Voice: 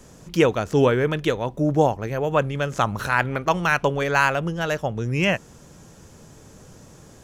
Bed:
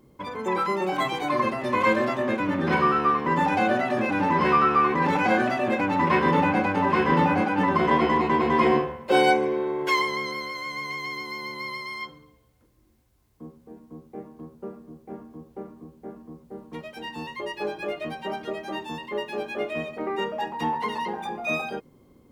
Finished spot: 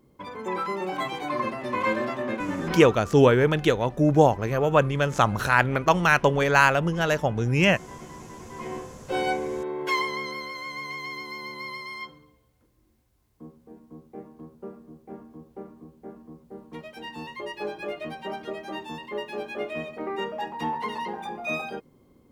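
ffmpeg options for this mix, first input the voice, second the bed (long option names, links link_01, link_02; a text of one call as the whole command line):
ffmpeg -i stem1.wav -i stem2.wav -filter_complex "[0:a]adelay=2400,volume=1dB[link_01];[1:a]volume=16.5dB,afade=type=out:start_time=2.59:duration=0.39:silence=0.112202,afade=type=in:start_time=8.47:duration=1.48:silence=0.0944061[link_02];[link_01][link_02]amix=inputs=2:normalize=0" out.wav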